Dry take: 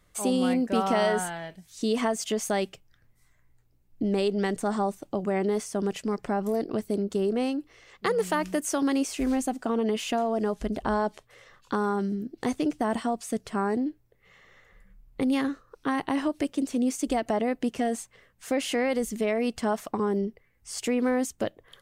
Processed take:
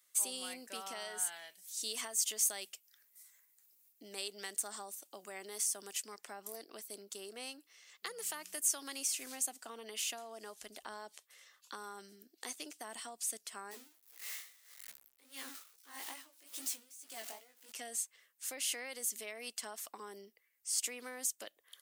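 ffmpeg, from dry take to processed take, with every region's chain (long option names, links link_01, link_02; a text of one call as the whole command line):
ffmpeg -i in.wav -filter_complex "[0:a]asettb=1/sr,asplit=3[link_01][link_02][link_03];[link_01]atrim=end=1.324[link_04];[link_02]atrim=start=1.32:end=6.07,asetpts=PTS-STARTPTS,afade=type=in:duration=0.004:curve=qsin,afade=type=out:start_time=4.746:duration=0.004:curve=qsin,highshelf=frequency=7000:gain=6,acompressor=mode=upward:threshold=-48dB:ratio=2.5:attack=3.2:release=140:knee=2.83:detection=peak[link_05];[link_03]atrim=start=6.066[link_06];[link_04][link_05]acrossfade=duration=0.004:curve1=hsin:curve2=qsin[link_07];[link_07][link_06]acrossfade=duration=0.004:curve1=qsin:curve2=hsin,asettb=1/sr,asplit=3[link_08][link_09][link_10];[link_08]atrim=end=13.714[link_11];[link_09]atrim=start=13.71:end=17.72,asetpts=PTS-STARTPTS,afade=type=in:duration=0.004:curve=qsin,afade=type=out:start_time=4.006:duration=0.004:curve=qsin,aeval=exprs='val(0)+0.5*0.0282*sgn(val(0))':channel_layout=same,flanger=delay=15:depth=7.8:speed=2.4,aeval=exprs='val(0)*pow(10,-22*(0.5-0.5*cos(2*PI*1.7*n/s))/20)':channel_layout=same[link_12];[link_10]atrim=start=17.716[link_13];[link_11][link_12]acrossfade=duration=0.004:curve1=hsin:curve2=qsin[link_14];[link_14][link_13]acrossfade=duration=0.004:curve1=qsin:curve2=hsin,equalizer=frequency=130:width=1.7:gain=-13,acrossover=split=430[link_15][link_16];[link_16]acompressor=threshold=-29dB:ratio=6[link_17];[link_15][link_17]amix=inputs=2:normalize=0,aderivative,volume=2.5dB" out.wav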